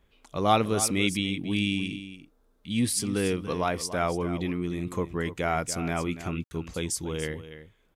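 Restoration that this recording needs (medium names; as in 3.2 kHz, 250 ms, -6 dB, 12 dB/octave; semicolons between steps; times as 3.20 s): room tone fill 6.44–6.51 s; inverse comb 288 ms -12.5 dB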